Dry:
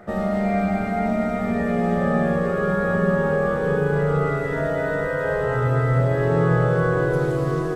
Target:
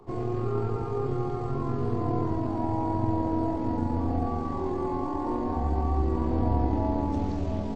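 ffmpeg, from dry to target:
-filter_complex "[0:a]acrossover=split=130|530|1500[a][b][c][d];[b]aeval=exprs='max(val(0),0)':c=same[e];[a][e][c][d]amix=inputs=4:normalize=0,asetrate=25476,aresample=44100,atempo=1.73107,volume=-4dB"

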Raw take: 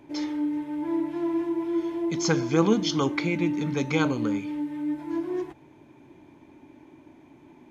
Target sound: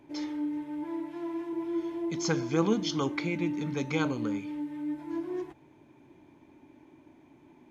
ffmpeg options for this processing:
-filter_complex "[0:a]asettb=1/sr,asplit=3[a][b][c];[a]atrim=end=0.844[d];[b]atrim=start=0.84:end=1.53,asetpts=PTS-STARTPTS,afade=t=in:d=0.004:c=qsin,afade=t=out:st=0.686:d=0.004:c=qsin,lowshelf=f=340:g=-7[e];[c]atrim=start=1.526[f];[d][e]acrossfade=d=0.004:c1=hsin:c2=qsin[g];[g][f]acrossfade=d=0.004:c1=qsin:c2=hsin,volume=-5dB"

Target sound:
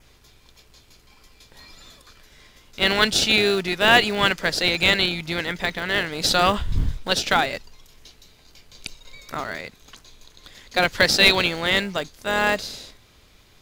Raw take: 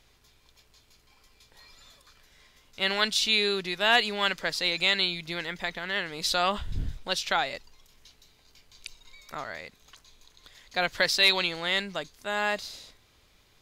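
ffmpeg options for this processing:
-filter_complex "[0:a]adynamicequalizer=threshold=0.01:dfrequency=3900:dqfactor=3.3:tfrequency=3900:tqfactor=3.3:attack=5:release=100:ratio=0.375:range=3:mode=cutabove:tftype=bell,asplit=2[a][b];[b]acrusher=samples=41:mix=1:aa=0.000001,volume=-10.5dB[c];[a][c]amix=inputs=2:normalize=0,volume=7dB"

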